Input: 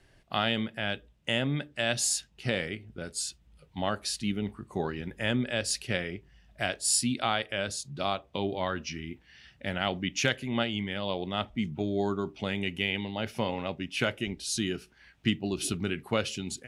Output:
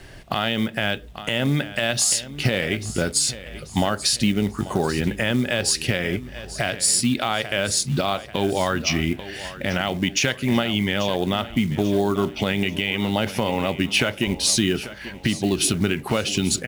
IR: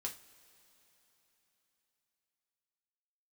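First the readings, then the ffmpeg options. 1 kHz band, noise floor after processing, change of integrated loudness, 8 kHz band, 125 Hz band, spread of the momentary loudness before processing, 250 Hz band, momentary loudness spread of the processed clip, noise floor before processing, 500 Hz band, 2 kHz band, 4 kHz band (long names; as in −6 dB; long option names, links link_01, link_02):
+7.0 dB, −40 dBFS, +9.0 dB, +10.0 dB, +10.0 dB, 8 LU, +9.5 dB, 7 LU, −63 dBFS, +8.0 dB, +7.5 dB, +9.0 dB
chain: -filter_complex "[0:a]acompressor=threshold=-35dB:ratio=8,acrusher=bits=6:mode=log:mix=0:aa=0.000001,asplit=2[link_01][link_02];[link_02]aecho=0:1:838|1676|2514|3352:0.158|0.065|0.0266|0.0109[link_03];[link_01][link_03]amix=inputs=2:normalize=0,alimiter=level_in=26dB:limit=-1dB:release=50:level=0:latency=1,volume=-7.5dB"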